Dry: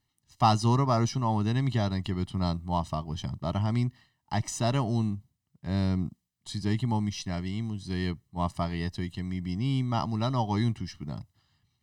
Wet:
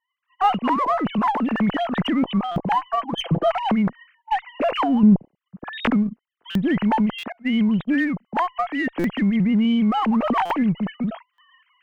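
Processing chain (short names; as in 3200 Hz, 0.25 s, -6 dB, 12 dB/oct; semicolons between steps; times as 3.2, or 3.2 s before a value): sine-wave speech; recorder AGC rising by 19 dB/s; low-pass opened by the level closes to 2500 Hz, open at -22.5 dBFS; in parallel at -5 dB: one-sided clip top -30 dBFS; 2.74–3.52 on the sum: comb 6 ms, depth 51%; 5.03–5.72 low shelf 450 Hz +8 dB; 7.32–7.94 gate -23 dBFS, range -32 dB; stuck buffer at 2.51/6.5/7.18/8.99/10.45/11.33, samples 256, times 8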